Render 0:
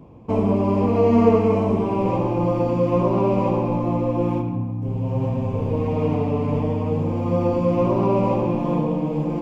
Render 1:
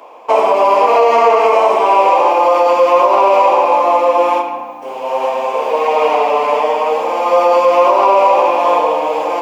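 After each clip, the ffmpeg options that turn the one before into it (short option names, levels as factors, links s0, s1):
-af "highpass=f=620:w=0.5412,highpass=f=620:w=1.3066,acontrast=78,alimiter=level_in=4.73:limit=0.891:release=50:level=0:latency=1,volume=0.891"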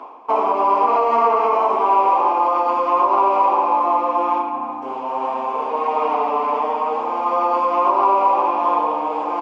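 -af "firequalizer=gain_entry='entry(100,0);entry(150,-10);entry(290,6);entry(520,-14);entry(790,-5);entry(1200,-2);entry(1800,-12);entry(5300,-16);entry(9800,-27)':delay=0.05:min_phase=1,areverse,acompressor=mode=upward:threshold=0.126:ratio=2.5,areverse,equalizer=f=320:w=5.5:g=-10.5"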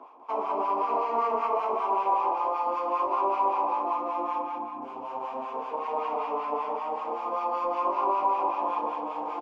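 -filter_complex "[0:a]acrossover=split=1000[s0][s1];[s0]aeval=exprs='val(0)*(1-0.7/2+0.7/2*cos(2*PI*5.2*n/s))':c=same[s2];[s1]aeval=exprs='val(0)*(1-0.7/2-0.7/2*cos(2*PI*5.2*n/s))':c=same[s3];[s2][s3]amix=inputs=2:normalize=0,asplit=2[s4][s5];[s5]aecho=0:1:198:0.631[s6];[s4][s6]amix=inputs=2:normalize=0,volume=0.376"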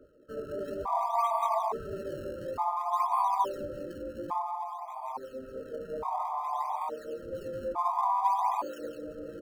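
-filter_complex "[0:a]acrossover=split=120|480|1600[s0][s1][s2][s3];[s1]asoftclip=type=tanh:threshold=0.0126[s4];[s3]acrusher=samples=39:mix=1:aa=0.000001:lfo=1:lforange=62.4:lforate=0.55[s5];[s0][s4][s2][s5]amix=inputs=4:normalize=0,afftfilt=real='re*gt(sin(2*PI*0.58*pts/sr)*(1-2*mod(floor(b*sr/1024/640),2)),0)':imag='im*gt(sin(2*PI*0.58*pts/sr)*(1-2*mod(floor(b*sr/1024/640),2)),0)':win_size=1024:overlap=0.75"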